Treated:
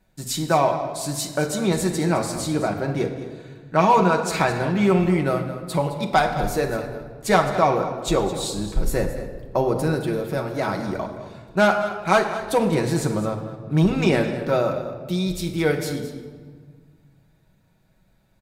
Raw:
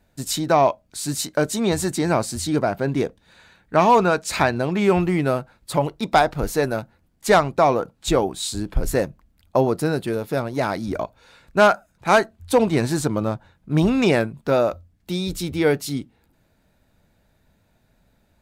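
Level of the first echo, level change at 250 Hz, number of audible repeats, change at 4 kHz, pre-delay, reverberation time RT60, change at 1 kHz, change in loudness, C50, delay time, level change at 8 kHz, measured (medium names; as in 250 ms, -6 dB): -14.0 dB, -0.5 dB, 1, -1.5 dB, 5 ms, 1.6 s, -1.0 dB, -1.0 dB, 7.0 dB, 213 ms, -1.5 dB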